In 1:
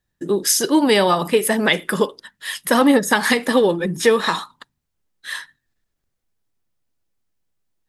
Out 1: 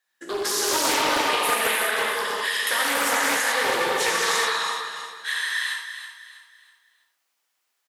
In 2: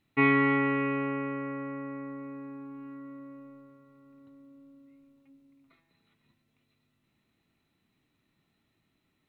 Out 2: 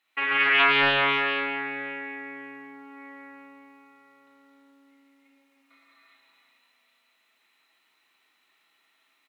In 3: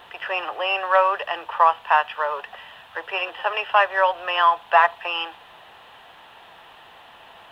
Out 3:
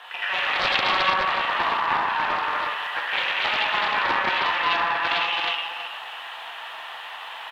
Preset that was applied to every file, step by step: HPF 1100 Hz 12 dB/oct; high shelf 2900 Hz -5 dB; in parallel at 0 dB: limiter -17 dBFS; on the sum: compressor 16:1, threshold -26 dBFS; feedback echo 0.324 s, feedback 36%, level -10 dB; non-linear reverb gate 0.45 s flat, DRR -7.5 dB; Doppler distortion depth 0.37 ms

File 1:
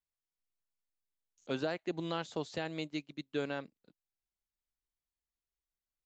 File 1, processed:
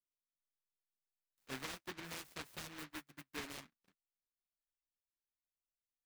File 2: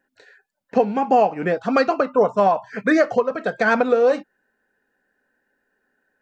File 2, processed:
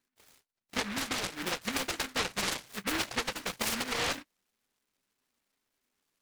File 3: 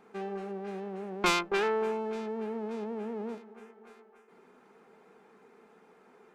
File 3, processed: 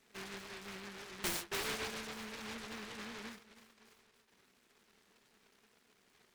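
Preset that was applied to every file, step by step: compressor, threshold -18 dBFS; flange 1.9 Hz, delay 7.2 ms, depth 4.1 ms, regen -26%; noise-modulated delay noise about 1600 Hz, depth 0.46 ms; gain -7.5 dB

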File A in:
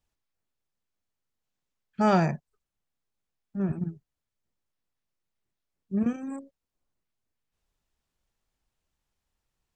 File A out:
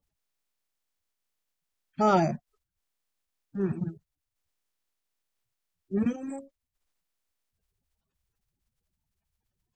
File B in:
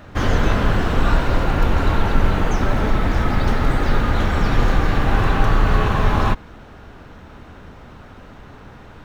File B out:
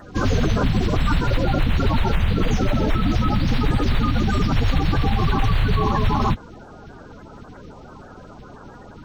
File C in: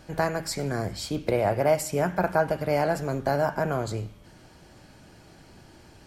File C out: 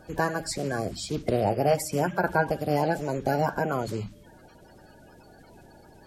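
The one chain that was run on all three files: bin magnitudes rounded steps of 30 dB; limiter -10 dBFS

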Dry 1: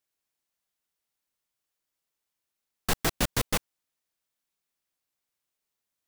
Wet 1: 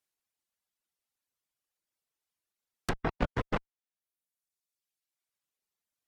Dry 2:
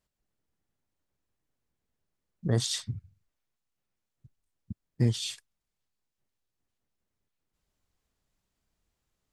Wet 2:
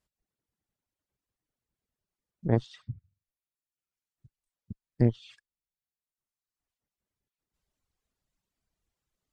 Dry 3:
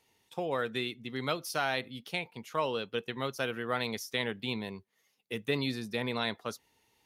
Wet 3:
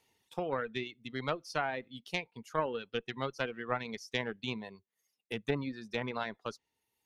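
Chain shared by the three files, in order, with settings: treble ducked by the level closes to 1600 Hz, closed at -27 dBFS; added harmonics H 2 -8 dB, 3 -25 dB, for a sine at -13 dBFS; reverb removal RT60 1.4 s

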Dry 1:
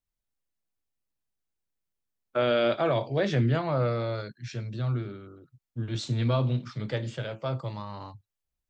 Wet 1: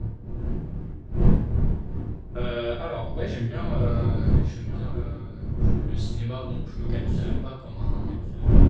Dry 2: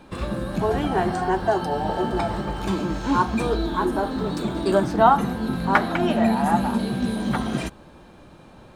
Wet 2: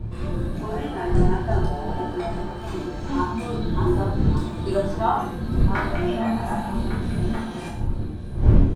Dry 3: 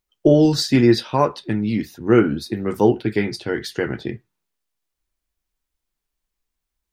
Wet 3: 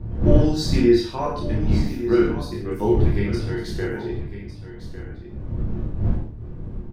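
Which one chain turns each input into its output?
wind noise 130 Hz -18 dBFS; chorus voices 2, 0.63 Hz, delay 28 ms, depth 3 ms; on a send: echo 1.154 s -12.5 dB; on the sum: non-linear reverb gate 0.19 s falling, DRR -1 dB; gain -6.5 dB

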